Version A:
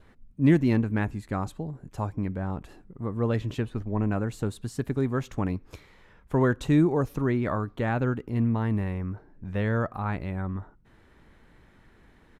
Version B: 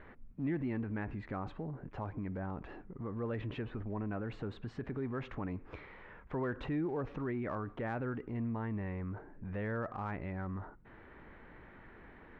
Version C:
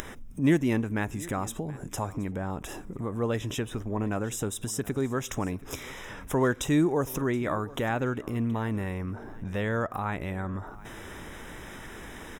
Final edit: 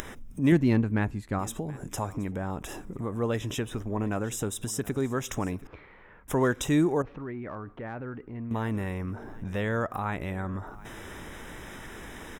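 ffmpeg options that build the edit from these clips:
-filter_complex "[1:a]asplit=2[s0][s1];[2:a]asplit=4[s2][s3][s4][s5];[s2]atrim=end=0.522[s6];[0:a]atrim=start=0.518:end=1.392[s7];[s3]atrim=start=1.388:end=5.672[s8];[s0]atrim=start=5.668:end=6.282[s9];[s4]atrim=start=6.278:end=7.022[s10];[s1]atrim=start=7.018:end=8.512[s11];[s5]atrim=start=8.508[s12];[s6][s7]acrossfade=d=0.004:c1=hsin:c2=hsin[s13];[s13][s8]acrossfade=d=0.004:c1=hsin:c2=hsin[s14];[s14][s9]acrossfade=d=0.004:c1=hsin:c2=hsin[s15];[s15][s10]acrossfade=d=0.004:c1=hsin:c2=hsin[s16];[s16][s11]acrossfade=d=0.004:c1=hsin:c2=hsin[s17];[s17][s12]acrossfade=d=0.004:c1=hsin:c2=hsin"

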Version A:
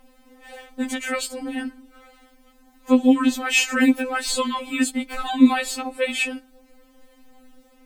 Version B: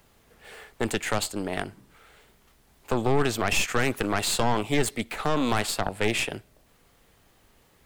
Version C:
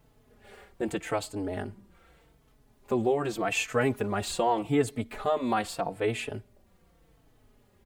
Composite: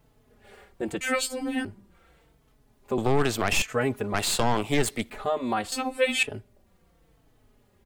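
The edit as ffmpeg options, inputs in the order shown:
-filter_complex "[0:a]asplit=2[s0][s1];[1:a]asplit=2[s2][s3];[2:a]asplit=5[s4][s5][s6][s7][s8];[s4]atrim=end=1.012[s9];[s0]atrim=start=1.008:end=1.652[s10];[s5]atrim=start=1.648:end=2.982[s11];[s2]atrim=start=2.978:end=3.622[s12];[s6]atrim=start=3.618:end=4.142[s13];[s3]atrim=start=4.138:end=5.102[s14];[s7]atrim=start=5.098:end=5.722[s15];[s1]atrim=start=5.718:end=6.232[s16];[s8]atrim=start=6.228[s17];[s9][s10]acrossfade=d=0.004:c1=hsin:c2=hsin[s18];[s18][s11]acrossfade=d=0.004:c1=hsin:c2=hsin[s19];[s19][s12]acrossfade=d=0.004:c1=hsin:c2=hsin[s20];[s20][s13]acrossfade=d=0.004:c1=hsin:c2=hsin[s21];[s21][s14]acrossfade=d=0.004:c1=hsin:c2=hsin[s22];[s22][s15]acrossfade=d=0.004:c1=hsin:c2=hsin[s23];[s23][s16]acrossfade=d=0.004:c1=hsin:c2=hsin[s24];[s24][s17]acrossfade=d=0.004:c1=hsin:c2=hsin"

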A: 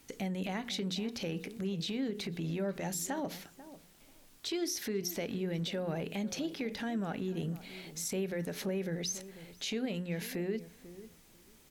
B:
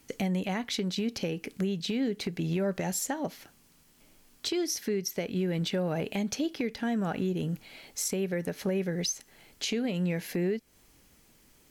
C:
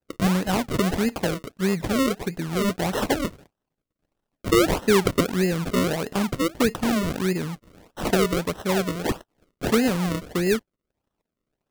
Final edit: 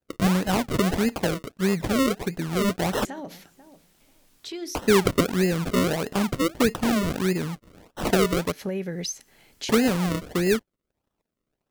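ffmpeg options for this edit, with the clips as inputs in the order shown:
-filter_complex "[2:a]asplit=3[s0][s1][s2];[s0]atrim=end=3.052[s3];[0:a]atrim=start=3.048:end=4.752[s4];[s1]atrim=start=4.748:end=8.522[s5];[1:a]atrim=start=8.518:end=9.692[s6];[s2]atrim=start=9.688[s7];[s3][s4]acrossfade=d=0.004:c1=hsin:c2=hsin[s8];[s8][s5]acrossfade=d=0.004:c1=hsin:c2=hsin[s9];[s9][s6]acrossfade=d=0.004:c1=hsin:c2=hsin[s10];[s10][s7]acrossfade=d=0.004:c1=hsin:c2=hsin"

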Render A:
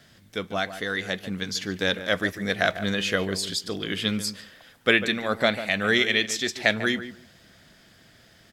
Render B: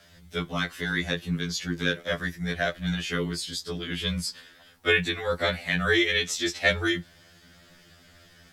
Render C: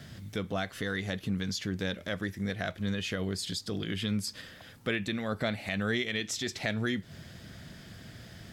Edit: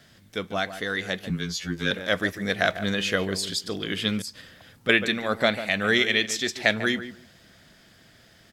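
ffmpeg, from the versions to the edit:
-filter_complex "[0:a]asplit=3[s0][s1][s2];[s0]atrim=end=1.302[s3];[1:a]atrim=start=1.298:end=1.912[s4];[s1]atrim=start=1.908:end=4.222[s5];[2:a]atrim=start=4.218:end=4.892[s6];[s2]atrim=start=4.888[s7];[s3][s4]acrossfade=d=0.004:c1=hsin:c2=hsin[s8];[s8][s5]acrossfade=d=0.004:c1=hsin:c2=hsin[s9];[s9][s6]acrossfade=d=0.004:c1=hsin:c2=hsin[s10];[s10][s7]acrossfade=d=0.004:c1=hsin:c2=hsin"

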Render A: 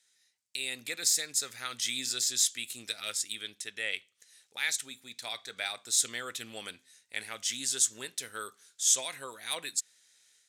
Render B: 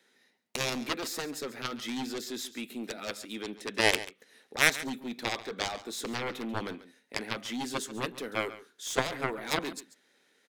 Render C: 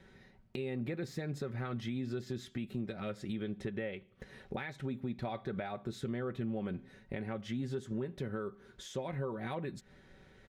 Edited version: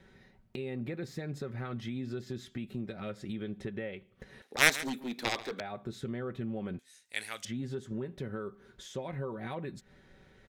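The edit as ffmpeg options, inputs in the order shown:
-filter_complex "[2:a]asplit=3[s0][s1][s2];[s0]atrim=end=4.422[s3];[1:a]atrim=start=4.418:end=5.602[s4];[s1]atrim=start=5.598:end=6.792[s5];[0:a]atrim=start=6.788:end=7.452[s6];[s2]atrim=start=7.448[s7];[s3][s4]acrossfade=d=0.004:c1=hsin:c2=hsin[s8];[s8][s5]acrossfade=d=0.004:c1=hsin:c2=hsin[s9];[s9][s6]acrossfade=d=0.004:c1=hsin:c2=hsin[s10];[s10][s7]acrossfade=d=0.004:c1=hsin:c2=hsin"

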